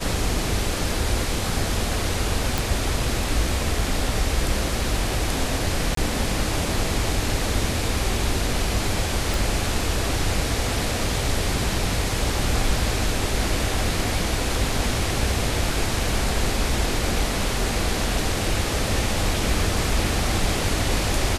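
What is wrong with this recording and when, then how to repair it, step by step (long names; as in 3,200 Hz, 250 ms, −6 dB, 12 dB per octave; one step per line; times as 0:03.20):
0:02.58: click
0:05.95–0:05.97: drop-out 23 ms
0:09.34: click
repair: click removal
repair the gap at 0:05.95, 23 ms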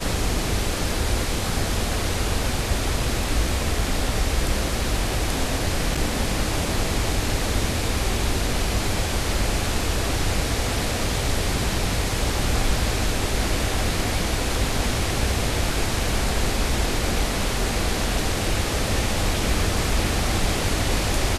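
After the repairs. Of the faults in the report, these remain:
none of them is left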